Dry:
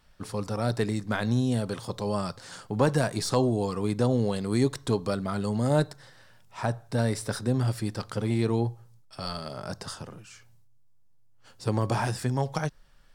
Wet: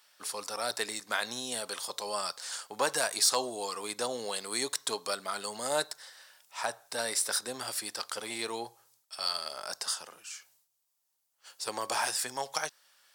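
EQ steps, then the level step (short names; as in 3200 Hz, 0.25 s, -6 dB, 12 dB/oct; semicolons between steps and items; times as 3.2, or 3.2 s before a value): HPF 670 Hz 12 dB/oct; high shelf 2800 Hz +10 dB; high shelf 9100 Hz +3.5 dB; -1.5 dB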